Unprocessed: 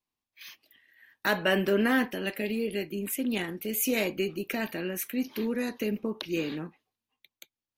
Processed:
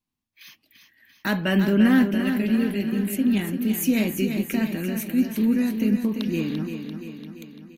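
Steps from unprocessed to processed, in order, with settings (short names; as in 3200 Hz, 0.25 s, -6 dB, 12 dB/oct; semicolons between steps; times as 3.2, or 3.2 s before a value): resonant low shelf 320 Hz +8.5 dB, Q 1.5; feedback echo 0.342 s, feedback 58%, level -7.5 dB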